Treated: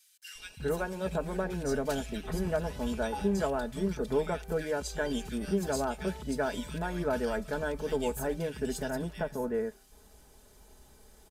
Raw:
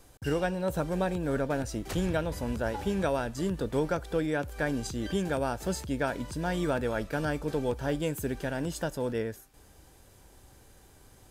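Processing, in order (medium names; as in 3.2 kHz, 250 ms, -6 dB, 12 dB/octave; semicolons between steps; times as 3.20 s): comb 4.7 ms, depth 68%; three bands offset in time highs, lows, mids 350/380 ms, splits 160/2100 Hz; trim -2 dB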